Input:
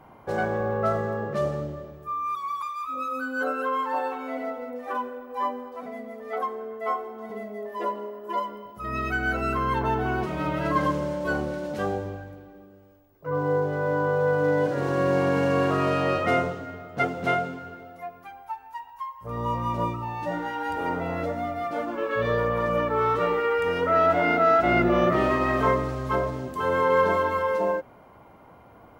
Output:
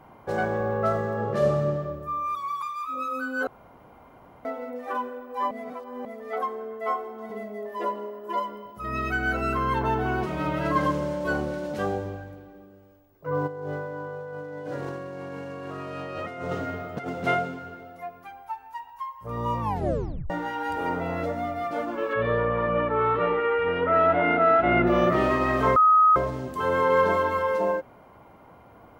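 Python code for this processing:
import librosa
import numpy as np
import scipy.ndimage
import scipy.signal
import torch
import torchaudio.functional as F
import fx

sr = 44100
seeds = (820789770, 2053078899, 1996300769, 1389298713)

y = fx.reverb_throw(x, sr, start_s=1.13, length_s=0.68, rt60_s=1.3, drr_db=0.0)
y = fx.over_compress(y, sr, threshold_db=-32.0, ratio=-1.0, at=(13.46, 17.08), fade=0.02)
y = fx.lowpass(y, sr, hz=3200.0, slope=24, at=(22.13, 24.87))
y = fx.edit(y, sr, fx.room_tone_fill(start_s=3.47, length_s=0.98),
    fx.reverse_span(start_s=5.51, length_s=0.54),
    fx.tape_stop(start_s=19.6, length_s=0.7),
    fx.bleep(start_s=25.76, length_s=0.4, hz=1260.0, db=-13.5), tone=tone)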